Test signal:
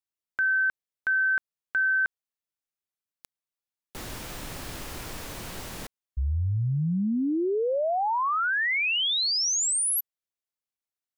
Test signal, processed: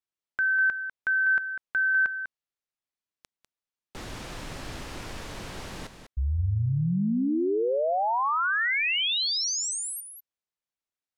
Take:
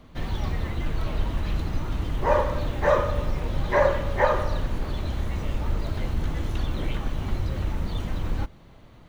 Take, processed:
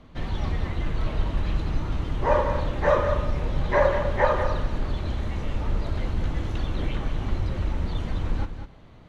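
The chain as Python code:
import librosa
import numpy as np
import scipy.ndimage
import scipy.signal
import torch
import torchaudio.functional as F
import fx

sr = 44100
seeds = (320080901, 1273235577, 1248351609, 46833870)

y = fx.air_absorb(x, sr, metres=54.0)
y = y + 10.0 ** (-9.0 / 20.0) * np.pad(y, (int(198 * sr / 1000.0), 0))[:len(y)]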